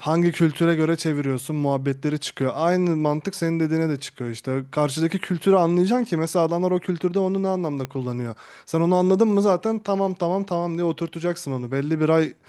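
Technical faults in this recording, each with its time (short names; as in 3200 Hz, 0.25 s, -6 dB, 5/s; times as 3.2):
7.85 pop -14 dBFS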